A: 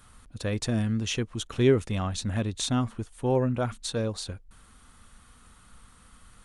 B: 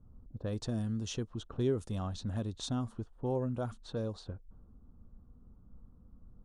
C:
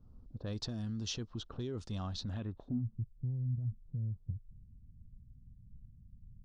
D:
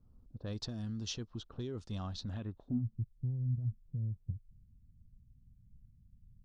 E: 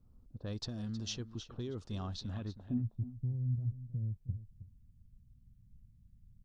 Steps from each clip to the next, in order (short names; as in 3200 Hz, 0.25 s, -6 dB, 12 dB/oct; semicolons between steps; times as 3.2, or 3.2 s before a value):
low-pass opened by the level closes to 310 Hz, open at -24 dBFS; bell 2200 Hz -14.5 dB 0.85 oct; compressor 1.5:1, threshold -45 dBFS, peak gain reduction 10.5 dB
dynamic EQ 500 Hz, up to -4 dB, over -47 dBFS, Q 1.6; limiter -30.5 dBFS, peak gain reduction 8.5 dB; low-pass sweep 4900 Hz -> 130 Hz, 2.32–2.86; gain -1 dB
upward expander 1.5:1, over -47 dBFS; gain +2 dB
echo 0.316 s -13.5 dB